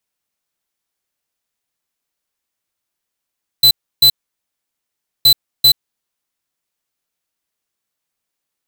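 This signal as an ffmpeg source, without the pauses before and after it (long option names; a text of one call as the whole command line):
ffmpeg -f lavfi -i "aevalsrc='0.398*(2*lt(mod(4020*t,1),0.5)-1)*clip(min(mod(mod(t,1.62),0.39),0.08-mod(mod(t,1.62),0.39))/0.005,0,1)*lt(mod(t,1.62),0.78)':duration=3.24:sample_rate=44100" out.wav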